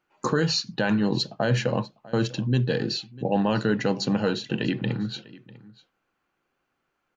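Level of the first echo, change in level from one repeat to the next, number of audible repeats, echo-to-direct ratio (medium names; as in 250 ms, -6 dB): -20.5 dB, no regular repeats, 1, -20.5 dB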